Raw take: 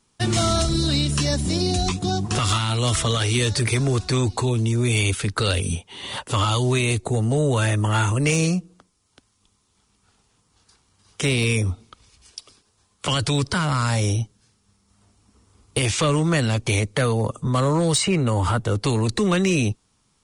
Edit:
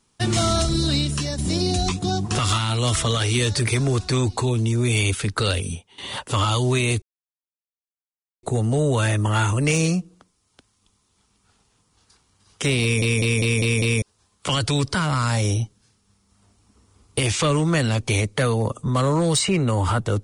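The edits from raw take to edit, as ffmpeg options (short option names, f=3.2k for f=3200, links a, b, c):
-filter_complex "[0:a]asplit=10[a][b][c][d][e][f][g][h][i][j];[a]atrim=end=1.38,asetpts=PTS-STARTPTS,afade=t=out:st=0.95:d=0.43:silence=0.446684[k];[b]atrim=start=1.38:end=5.98,asetpts=PTS-STARTPTS,afade=t=in:d=0.004:c=hsin:silence=0.446684,afade=t=out:st=4.09:d=0.51:silence=0.177828[l];[c]atrim=start=5.98:end=7.02,asetpts=PTS-STARTPTS,afade=t=in:d=0.004:c=hsin:silence=0.177828,afade=t=out:st=1.036:d=0.004:c=hsin,apad=pad_dur=1.41[m];[d]atrim=start=7.02:end=11.612,asetpts=PTS-STARTPTS,afade=t=in:d=0.004:c=hsin[n];[e]atrim=start=11.408:end=11.612[o];[f]atrim=start=11.408:end=11.612[p];[g]atrim=start=11.408:end=11.612[q];[h]atrim=start=11.408:end=11.612[r];[i]atrim=start=11.408:end=11.612[s];[j]atrim=start=12.608[t];[k][l][m][n]concat=n=4:v=0:a=1[u];[u][o]acrossfade=d=0.004:c1=hsin:c2=hsin[v];[v][p]acrossfade=d=0.004:c1=hsin:c2=hsin[w];[w][q]acrossfade=d=0.004:c1=hsin:c2=hsin[x];[x][r]acrossfade=d=0.004:c1=hsin:c2=hsin[y];[y][s]acrossfade=d=0.004:c1=hsin:c2=hsin[z];[z][t]acrossfade=d=0.004:c1=hsin:c2=hsin"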